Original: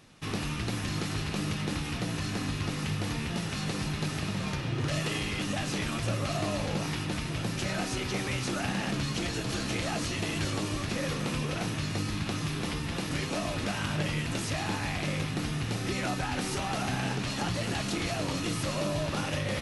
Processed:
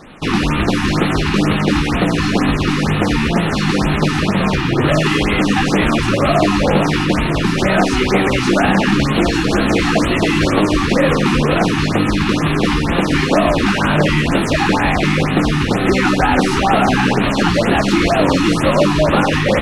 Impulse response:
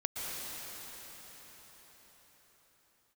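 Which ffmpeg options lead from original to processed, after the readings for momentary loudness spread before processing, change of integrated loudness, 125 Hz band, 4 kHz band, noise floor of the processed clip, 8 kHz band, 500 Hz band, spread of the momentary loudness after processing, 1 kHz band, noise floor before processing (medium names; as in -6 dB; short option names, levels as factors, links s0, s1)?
2 LU, +17.0 dB, +14.0 dB, +13.0 dB, -18 dBFS, +8.0 dB, +19.5 dB, 2 LU, +19.0 dB, -35 dBFS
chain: -filter_complex "[0:a]asplit=2[s0][s1];[s1]acrusher=bits=3:mode=log:mix=0:aa=0.000001,volume=0.596[s2];[s0][s2]amix=inputs=2:normalize=0,apsyclip=8.41,equalizer=f=110:w=1.5:g=-12.5,acrossover=split=1800[s3][s4];[s4]asoftclip=type=hard:threshold=0.211[s5];[s3][s5]amix=inputs=2:normalize=0,aemphasis=mode=reproduction:type=75fm,afftfilt=real='re*(1-between(b*sr/1024,510*pow(6300/510,0.5+0.5*sin(2*PI*2.1*pts/sr))/1.41,510*pow(6300/510,0.5+0.5*sin(2*PI*2.1*pts/sr))*1.41))':imag='im*(1-between(b*sr/1024,510*pow(6300/510,0.5+0.5*sin(2*PI*2.1*pts/sr))/1.41,510*pow(6300/510,0.5+0.5*sin(2*PI*2.1*pts/sr))*1.41))':win_size=1024:overlap=0.75,volume=0.794"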